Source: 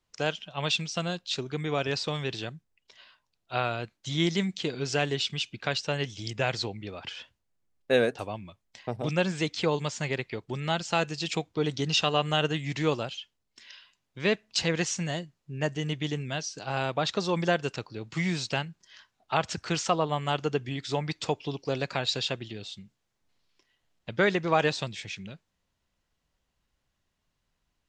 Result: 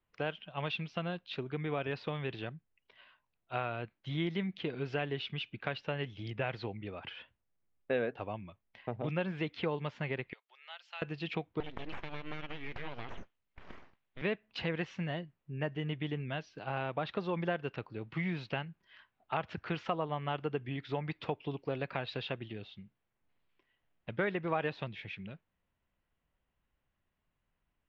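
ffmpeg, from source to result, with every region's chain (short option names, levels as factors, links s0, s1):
-filter_complex "[0:a]asettb=1/sr,asplit=3[s0][s1][s2];[s0]atrim=end=10.334[s3];[s1]atrim=start=10.33:end=11.02,asetpts=PTS-STARTPTS,afade=t=in:d=0.004:c=qsin,afade=t=out:st=0.686:d=0.004:c=qsin,highpass=f=590:w=0.5412,highpass=f=590:w=1.3066,aderivative[s4];[s2]atrim=start=11.016[s5];[s3][s4]acrossfade=d=0.004:c1=hsin:c2=qsin[s6];[s6][s5]acrossfade=d=0.004:c1=qsin:c2=hsin,asettb=1/sr,asplit=3[s7][s8][s9];[s7]atrim=end=11.604[s10];[s8]atrim=start=11.6:end=14.22,asetpts=PTS-STARTPTS,afade=t=in:d=0.004:c=qsin,afade=t=out:st=2.616:d=0.004:c=qsin,highshelf=f=2200:g=10,acompressor=threshold=0.0316:ratio=10:attack=3.2:release=140:knee=1:detection=peak,aeval=exprs='abs(val(0))':c=same[s11];[s9]atrim=start=14.216[s12];[s10][s11]acrossfade=d=0.004:c1=hsin:c2=qsin[s13];[s13][s12]acrossfade=d=0.004:c1=qsin:c2=hsin,lowpass=f=2900:w=0.5412,lowpass=f=2900:w=1.3066,acompressor=threshold=0.0355:ratio=2,volume=0.668"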